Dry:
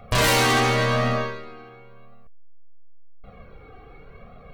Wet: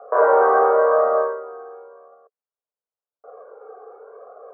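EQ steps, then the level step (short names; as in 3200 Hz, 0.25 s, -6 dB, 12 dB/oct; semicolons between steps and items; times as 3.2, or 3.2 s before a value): Chebyshev band-pass 430–1500 Hz, order 4; tilt -4.5 dB/oct; +6.0 dB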